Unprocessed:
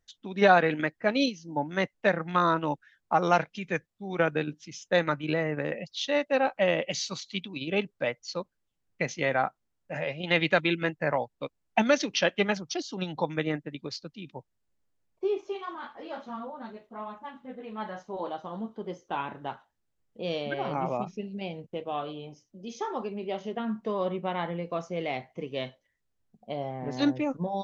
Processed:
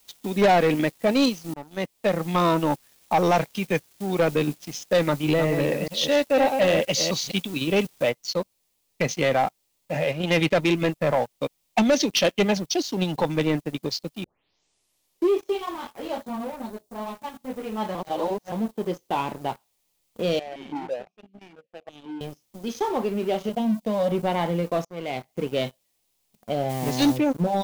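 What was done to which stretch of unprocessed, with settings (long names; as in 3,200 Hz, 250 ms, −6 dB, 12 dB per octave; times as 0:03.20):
0:01.54–0:02.41: fade in, from −21 dB
0:05.06–0:07.35: delay that plays each chunk backwards 205 ms, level −8 dB
0:08.10: noise floor change −55 dB −64 dB
0:10.11–0:10.74: high-shelf EQ 3,500 Hz −5.5 dB
0:14.24: tape start 1.11 s
0:16.18–0:17.08: parametric band 2,200 Hz −13.5 dB 1.2 octaves
0:17.95–0:18.52: reverse
0:20.39–0:22.21: formant filter that steps through the vowels 6 Hz
0:23.49–0:24.12: phaser with its sweep stopped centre 380 Hz, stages 6
0:24.85–0:25.44: fade in, from −19 dB
0:26.69–0:27.16: spectral envelope flattened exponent 0.6
whole clip: parametric band 1,500 Hz −11 dB 0.74 octaves; leveller curve on the samples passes 3; level −2 dB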